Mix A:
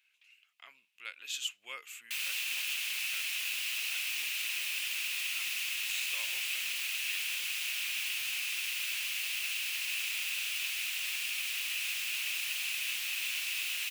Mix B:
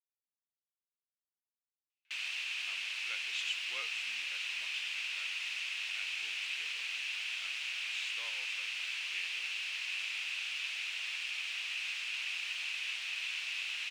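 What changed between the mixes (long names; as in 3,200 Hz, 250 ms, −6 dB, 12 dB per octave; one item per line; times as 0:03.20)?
speech: entry +2.05 s
master: add high-frequency loss of the air 120 metres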